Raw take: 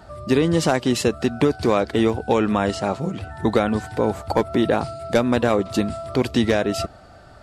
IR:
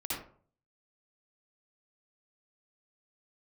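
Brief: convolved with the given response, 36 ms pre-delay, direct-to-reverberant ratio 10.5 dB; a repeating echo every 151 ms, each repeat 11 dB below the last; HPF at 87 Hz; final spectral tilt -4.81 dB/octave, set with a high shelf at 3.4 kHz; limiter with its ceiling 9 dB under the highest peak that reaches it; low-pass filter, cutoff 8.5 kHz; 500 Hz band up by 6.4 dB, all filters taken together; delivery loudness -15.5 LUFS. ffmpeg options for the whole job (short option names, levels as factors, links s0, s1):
-filter_complex "[0:a]highpass=87,lowpass=8500,equalizer=f=500:t=o:g=7.5,highshelf=f=3400:g=7,alimiter=limit=0.376:level=0:latency=1,aecho=1:1:151|302|453:0.282|0.0789|0.0221,asplit=2[s0][s1];[1:a]atrim=start_sample=2205,adelay=36[s2];[s1][s2]afir=irnorm=-1:irlink=0,volume=0.2[s3];[s0][s3]amix=inputs=2:normalize=0,volume=1.58"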